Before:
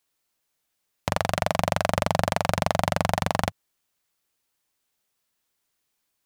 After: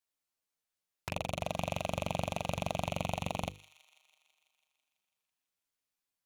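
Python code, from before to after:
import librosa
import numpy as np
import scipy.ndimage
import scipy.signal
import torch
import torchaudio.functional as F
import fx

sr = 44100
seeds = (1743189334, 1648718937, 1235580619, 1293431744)

p1 = fx.rattle_buzz(x, sr, strikes_db=-36.0, level_db=-19.0)
p2 = fx.env_flanger(p1, sr, rest_ms=11.0, full_db=-25.0)
p3 = p2 + fx.echo_wet_highpass(p2, sr, ms=165, feedback_pct=68, hz=2000.0, wet_db=-17, dry=0)
p4 = fx.dmg_buzz(p3, sr, base_hz=400.0, harmonics=19, level_db=-53.0, tilt_db=-5, odd_only=False, at=(1.41, 2.88), fade=0.02)
p5 = fx.hum_notches(p4, sr, base_hz=50, count=10)
y = F.gain(torch.from_numpy(p5), -9.0).numpy()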